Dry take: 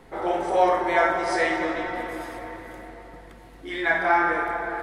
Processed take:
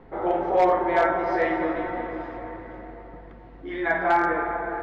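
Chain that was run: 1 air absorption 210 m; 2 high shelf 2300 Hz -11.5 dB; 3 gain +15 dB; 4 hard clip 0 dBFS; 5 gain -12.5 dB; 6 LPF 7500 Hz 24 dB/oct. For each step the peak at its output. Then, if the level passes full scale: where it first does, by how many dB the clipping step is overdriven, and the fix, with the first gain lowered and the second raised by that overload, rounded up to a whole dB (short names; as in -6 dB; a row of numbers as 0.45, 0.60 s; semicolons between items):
-8.5, -9.5, +5.5, 0.0, -12.5, -12.0 dBFS; step 3, 5.5 dB; step 3 +9 dB, step 5 -6.5 dB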